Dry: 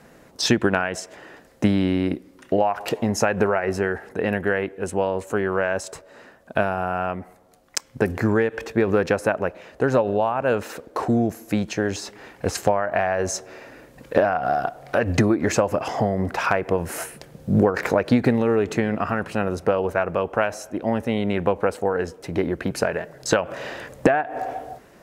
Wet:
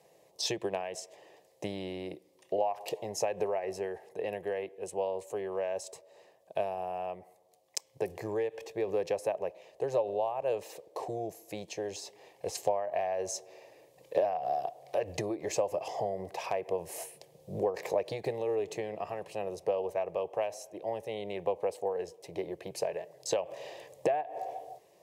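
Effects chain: HPF 180 Hz 12 dB/oct; fixed phaser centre 590 Hz, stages 4; gain -8.5 dB

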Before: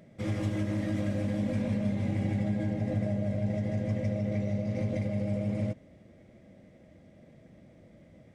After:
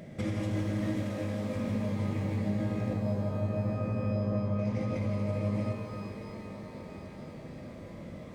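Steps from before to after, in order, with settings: compressor 4:1, threshold -41 dBFS, peak gain reduction 13.5 dB; 1.03–1.56 low shelf 160 Hz -10.5 dB; 2.93–4.59 LPF 1300 Hz 24 dB/oct; shimmer reverb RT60 3.4 s, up +12 st, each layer -8 dB, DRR 2.5 dB; gain +8.5 dB

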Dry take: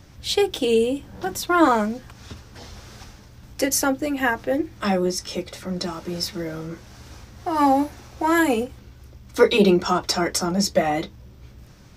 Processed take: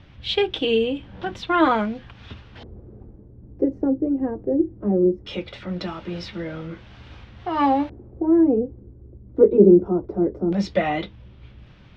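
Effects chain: LFO low-pass square 0.19 Hz 390–3200 Hz; tone controls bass +2 dB, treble -7 dB; gain -2 dB

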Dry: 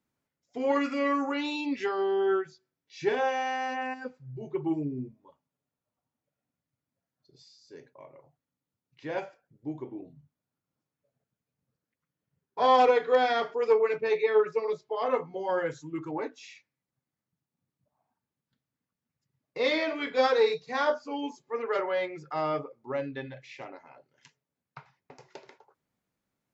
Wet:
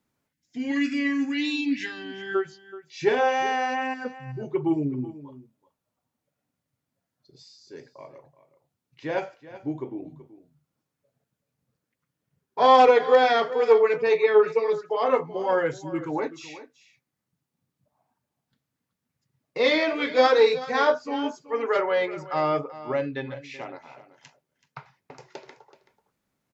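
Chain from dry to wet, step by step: wow and flutter 22 cents; spectral gain 0.33–2.35, 330–1500 Hz -20 dB; echo 0.379 s -16 dB; gain +5.5 dB

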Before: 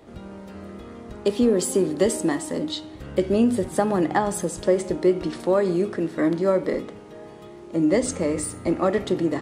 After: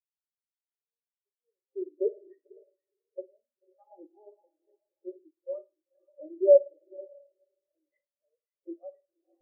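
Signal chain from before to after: HPF 180 Hz 12 dB/oct; bell 250 Hz -5.5 dB 1.2 oct; in parallel at 0 dB: limiter -17.5 dBFS, peak gain reduction 9.5 dB; on the sum: wah 0.9 Hz 400–2200 Hz, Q 2.1; on a send: diffused feedback echo 0.502 s, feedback 42%, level -5 dB; on the sum: spring tank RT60 1.1 s, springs 53 ms, DRR 4 dB; spectral expander 4:1

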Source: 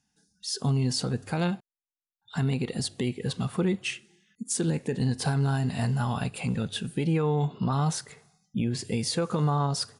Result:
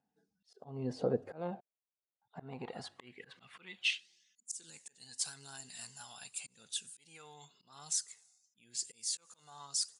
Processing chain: auto swell 0.257 s; phaser 0.9 Hz, delay 1.5 ms, feedback 35%; band-pass sweep 550 Hz -> 7400 Hz, 2.24–4.54; gain +4 dB

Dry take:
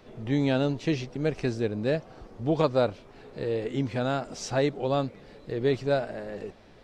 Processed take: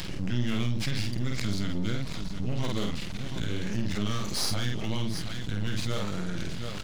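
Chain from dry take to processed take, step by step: delay-line pitch shifter -3 st; in parallel at -5.5 dB: overloaded stage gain 21 dB; on the sum: EQ curve 200 Hz 0 dB, 300 Hz -23 dB, 5200 Hz +6 dB; half-wave rectifier; bell 71 Hz -6 dB 0.97 oct; on a send: tapped delay 49/727 ms -4.5/-17.5 dB; on the sum: fast leveller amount 70%

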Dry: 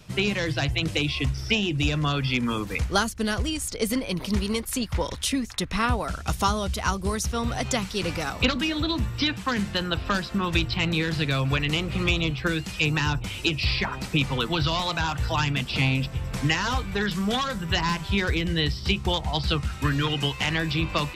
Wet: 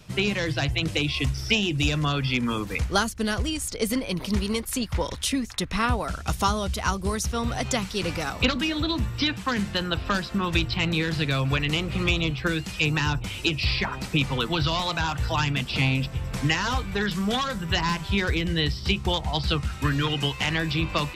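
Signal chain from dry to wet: 1.14–2.05 high shelf 4800 Hz +6 dB

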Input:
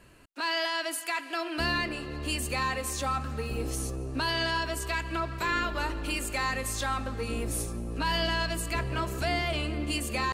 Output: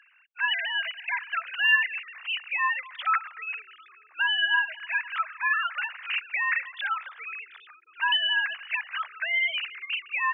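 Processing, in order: sine-wave speech; HPF 1400 Hz 24 dB/oct; gain +6.5 dB

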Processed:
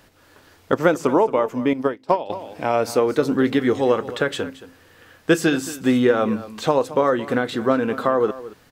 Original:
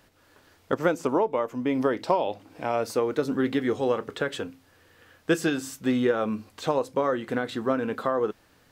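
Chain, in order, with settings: on a send: echo 0.223 s -16 dB; 1.73–2.3 on the sum: upward expander 2.5:1, over -34 dBFS; gain +6.5 dB

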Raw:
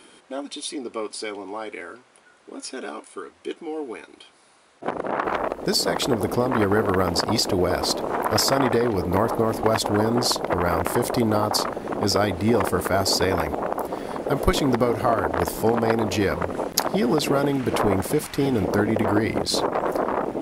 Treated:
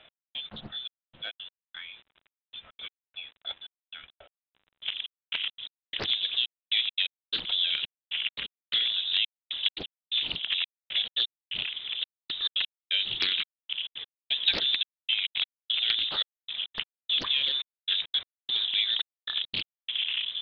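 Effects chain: step gate "x...xxxxxx...xx." 172 bpm -60 dB; requantised 8-bit, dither none; inverted band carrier 3800 Hz; Doppler distortion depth 0.63 ms; gain -6 dB

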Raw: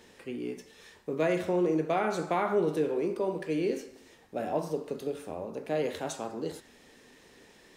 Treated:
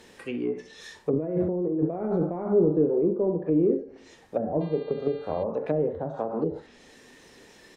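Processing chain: spectral noise reduction 7 dB; on a send: tapped delay 41/66 ms -19/-14 dB; 1.13–2.47 on the sum: negative-ratio compressor -33 dBFS, ratio -1; in parallel at -7 dB: soft clip -29 dBFS, distortion -10 dB; on the sum: treble ducked by the level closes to 400 Hz, closed at -28.5 dBFS; 4.6–5.42 buzz 400 Hz, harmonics 11, -59 dBFS -3 dB/oct; gain +7.5 dB

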